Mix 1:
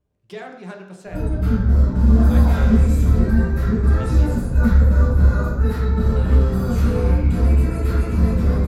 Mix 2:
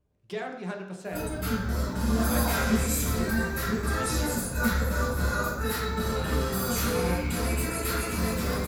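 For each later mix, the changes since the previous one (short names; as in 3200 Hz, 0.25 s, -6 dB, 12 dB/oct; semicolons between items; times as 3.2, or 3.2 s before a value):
background: add tilt +4 dB/oct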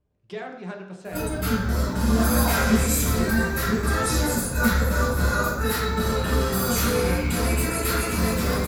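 speech: add air absorption 52 m; background +5.0 dB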